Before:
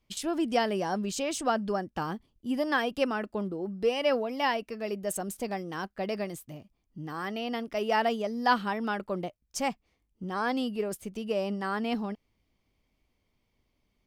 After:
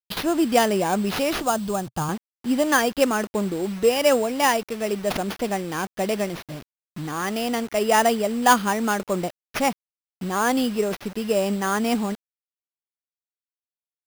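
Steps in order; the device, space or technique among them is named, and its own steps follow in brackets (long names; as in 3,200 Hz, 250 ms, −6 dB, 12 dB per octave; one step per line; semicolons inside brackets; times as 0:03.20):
early 8-bit sampler (sample-rate reduction 7,900 Hz, jitter 0%; bit reduction 8 bits)
0:01.42–0:02.09: octave-band graphic EQ 125/250/500/2,000 Hz +9/−7/−4/−9 dB
level +8 dB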